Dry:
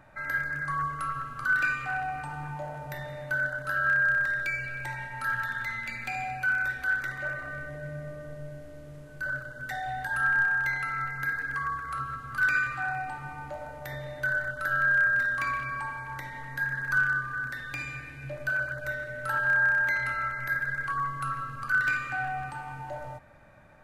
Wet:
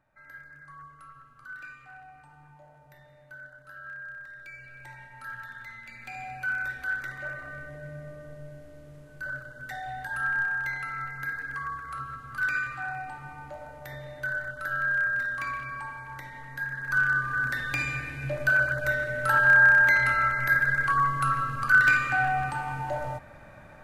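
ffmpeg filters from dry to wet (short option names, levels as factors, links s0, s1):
-af "volume=2.11,afade=t=in:st=4.31:d=0.61:silence=0.446684,afade=t=in:st=5.89:d=0.63:silence=0.446684,afade=t=in:st=16.8:d=0.74:silence=0.334965"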